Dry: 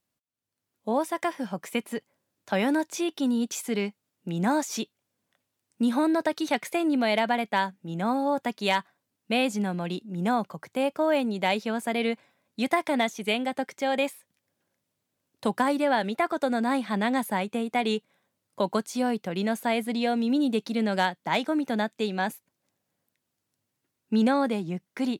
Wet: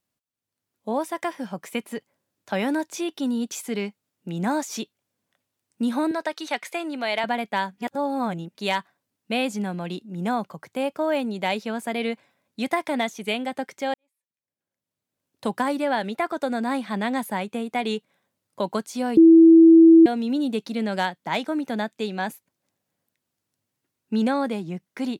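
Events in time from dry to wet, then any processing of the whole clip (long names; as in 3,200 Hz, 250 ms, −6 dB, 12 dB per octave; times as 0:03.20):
0:06.11–0:07.24: meter weighting curve A
0:07.78–0:08.55: reverse
0:13.94–0:15.46: fade in quadratic
0:19.17–0:20.06: beep over 328 Hz −7.5 dBFS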